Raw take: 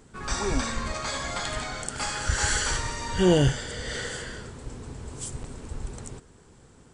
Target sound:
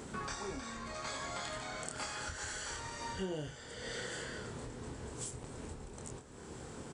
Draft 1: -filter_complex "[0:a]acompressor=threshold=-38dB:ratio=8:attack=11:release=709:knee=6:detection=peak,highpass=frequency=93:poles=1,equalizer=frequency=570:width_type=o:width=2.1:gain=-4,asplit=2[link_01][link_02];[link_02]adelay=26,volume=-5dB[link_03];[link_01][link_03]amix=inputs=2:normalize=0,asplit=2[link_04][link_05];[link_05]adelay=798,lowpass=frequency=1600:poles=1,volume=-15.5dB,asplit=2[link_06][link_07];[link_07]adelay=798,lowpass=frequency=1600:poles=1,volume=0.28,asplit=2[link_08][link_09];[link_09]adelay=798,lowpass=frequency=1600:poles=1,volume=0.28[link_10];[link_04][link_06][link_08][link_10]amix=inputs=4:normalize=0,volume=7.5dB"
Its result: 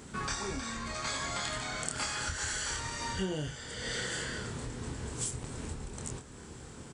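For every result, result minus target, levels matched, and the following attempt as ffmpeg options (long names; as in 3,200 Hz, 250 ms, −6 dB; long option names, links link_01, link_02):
downward compressor: peak gain reduction −8 dB; 500 Hz band −4.0 dB
-filter_complex "[0:a]acompressor=threshold=-47dB:ratio=8:attack=11:release=709:knee=6:detection=peak,highpass=frequency=93:poles=1,equalizer=frequency=570:width_type=o:width=2.1:gain=-4,asplit=2[link_01][link_02];[link_02]adelay=26,volume=-5dB[link_03];[link_01][link_03]amix=inputs=2:normalize=0,asplit=2[link_04][link_05];[link_05]adelay=798,lowpass=frequency=1600:poles=1,volume=-15.5dB,asplit=2[link_06][link_07];[link_07]adelay=798,lowpass=frequency=1600:poles=1,volume=0.28,asplit=2[link_08][link_09];[link_09]adelay=798,lowpass=frequency=1600:poles=1,volume=0.28[link_10];[link_04][link_06][link_08][link_10]amix=inputs=4:normalize=0,volume=7.5dB"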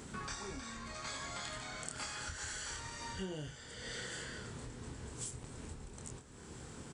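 500 Hz band −4.0 dB
-filter_complex "[0:a]acompressor=threshold=-47dB:ratio=8:attack=11:release=709:knee=6:detection=peak,highpass=frequency=93:poles=1,equalizer=frequency=570:width_type=o:width=2.1:gain=2,asplit=2[link_01][link_02];[link_02]adelay=26,volume=-5dB[link_03];[link_01][link_03]amix=inputs=2:normalize=0,asplit=2[link_04][link_05];[link_05]adelay=798,lowpass=frequency=1600:poles=1,volume=-15.5dB,asplit=2[link_06][link_07];[link_07]adelay=798,lowpass=frequency=1600:poles=1,volume=0.28,asplit=2[link_08][link_09];[link_09]adelay=798,lowpass=frequency=1600:poles=1,volume=0.28[link_10];[link_04][link_06][link_08][link_10]amix=inputs=4:normalize=0,volume=7.5dB"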